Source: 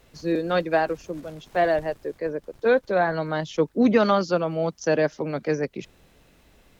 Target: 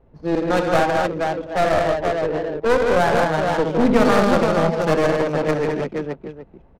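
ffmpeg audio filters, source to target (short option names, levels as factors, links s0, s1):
-filter_complex "[0:a]equalizer=f=880:w=4.4:g=5.5,asplit=2[s0][s1];[s1]aecho=0:1:66|86|161|215|475|774:0.376|0.266|0.562|0.562|0.562|0.188[s2];[s0][s2]amix=inputs=2:normalize=0,aeval=exprs='clip(val(0),-1,0.0708)':c=same,adynamicsmooth=sensitivity=4:basefreq=730,volume=1.5"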